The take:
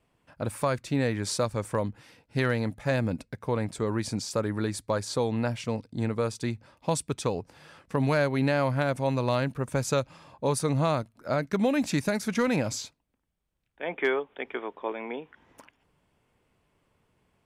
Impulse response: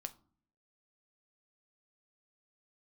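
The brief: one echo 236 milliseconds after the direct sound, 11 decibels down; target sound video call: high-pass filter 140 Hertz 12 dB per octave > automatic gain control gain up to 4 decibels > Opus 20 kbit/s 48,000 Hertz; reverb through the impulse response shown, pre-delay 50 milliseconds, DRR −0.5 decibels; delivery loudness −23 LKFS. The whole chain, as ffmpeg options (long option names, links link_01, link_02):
-filter_complex "[0:a]aecho=1:1:236:0.282,asplit=2[link_01][link_02];[1:a]atrim=start_sample=2205,adelay=50[link_03];[link_02][link_03]afir=irnorm=-1:irlink=0,volume=4dB[link_04];[link_01][link_04]amix=inputs=2:normalize=0,highpass=140,dynaudnorm=maxgain=4dB,volume=2.5dB" -ar 48000 -c:a libopus -b:a 20k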